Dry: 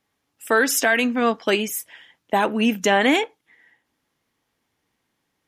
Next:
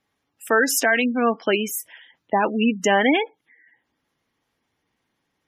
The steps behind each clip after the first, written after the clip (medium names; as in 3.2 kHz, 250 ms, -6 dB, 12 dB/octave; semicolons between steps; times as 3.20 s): spectral gate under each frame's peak -20 dB strong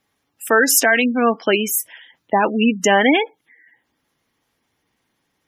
treble shelf 6.9 kHz +6.5 dB; trim +3.5 dB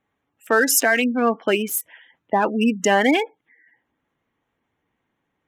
local Wiener filter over 9 samples; trim -2.5 dB